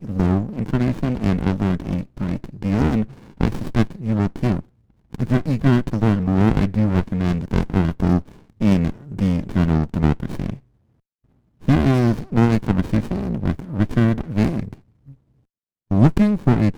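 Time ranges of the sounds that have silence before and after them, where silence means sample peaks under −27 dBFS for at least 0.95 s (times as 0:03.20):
0:11.68–0:14.73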